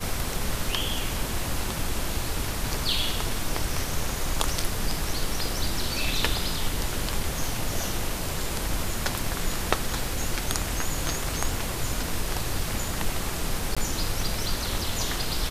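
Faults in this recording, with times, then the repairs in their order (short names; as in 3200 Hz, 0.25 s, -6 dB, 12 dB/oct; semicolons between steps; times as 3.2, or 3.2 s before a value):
13.75–13.77 gap 16 ms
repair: interpolate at 13.75, 16 ms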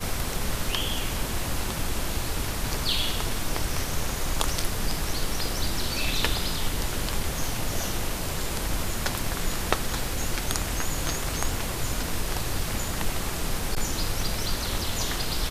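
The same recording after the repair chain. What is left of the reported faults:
none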